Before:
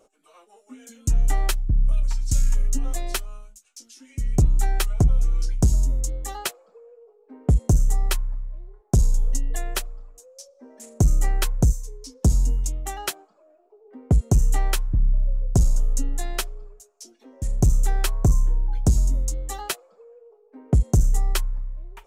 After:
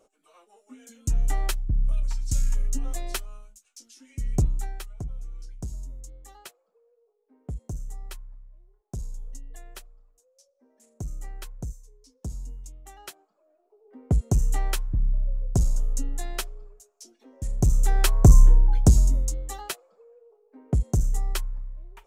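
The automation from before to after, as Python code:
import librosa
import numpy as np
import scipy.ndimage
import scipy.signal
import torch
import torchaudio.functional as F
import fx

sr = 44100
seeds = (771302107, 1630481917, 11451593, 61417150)

y = fx.gain(x, sr, db=fx.line((4.4, -4.0), (4.87, -16.5), (12.81, -16.5), (14.0, -4.0), (17.56, -4.0), (18.43, 7.0), (19.64, -5.0)))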